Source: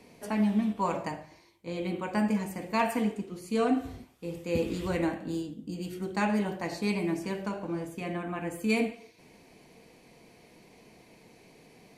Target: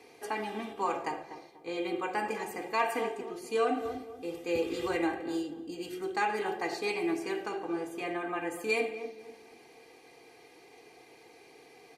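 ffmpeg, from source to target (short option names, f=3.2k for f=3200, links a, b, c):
-filter_complex "[0:a]highpass=f=520:p=1,highshelf=f=4.3k:g=-6,aecho=1:1:2.5:0.77,asplit=2[a][b];[b]adelay=242,lowpass=f=900:p=1,volume=-11dB,asplit=2[c][d];[d]adelay=242,lowpass=f=900:p=1,volume=0.39,asplit=2[e][f];[f]adelay=242,lowpass=f=900:p=1,volume=0.39,asplit=2[g][h];[h]adelay=242,lowpass=f=900:p=1,volume=0.39[i];[a][c][e][g][i]amix=inputs=5:normalize=0,asplit=2[j][k];[k]alimiter=level_in=1dB:limit=-24dB:level=0:latency=1:release=209,volume=-1dB,volume=-0.5dB[l];[j][l]amix=inputs=2:normalize=0,volume=-3.5dB"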